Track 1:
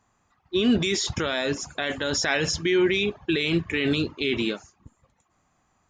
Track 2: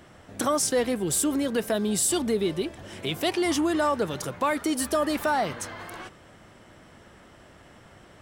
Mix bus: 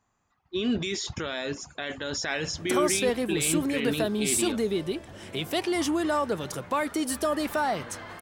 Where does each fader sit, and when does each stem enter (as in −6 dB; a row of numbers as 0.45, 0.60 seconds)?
−6.0, −2.0 decibels; 0.00, 2.30 seconds